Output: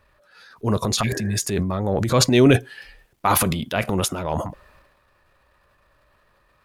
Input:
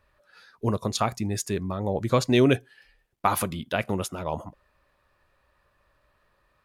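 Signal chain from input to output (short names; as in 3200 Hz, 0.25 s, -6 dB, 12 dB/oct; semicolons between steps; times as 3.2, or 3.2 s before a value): spectral repair 1.05–1.33, 240–1900 Hz after; transient shaper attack -5 dB, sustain +9 dB; gain +5.5 dB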